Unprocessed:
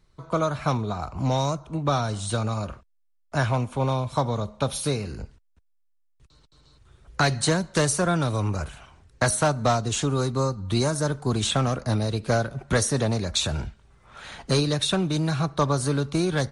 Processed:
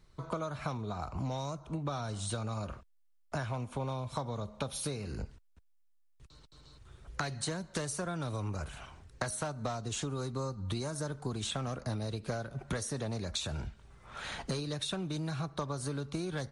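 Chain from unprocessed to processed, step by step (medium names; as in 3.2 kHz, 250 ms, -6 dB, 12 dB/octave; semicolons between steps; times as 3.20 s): compression 6:1, threshold -34 dBFS, peak gain reduction 16.5 dB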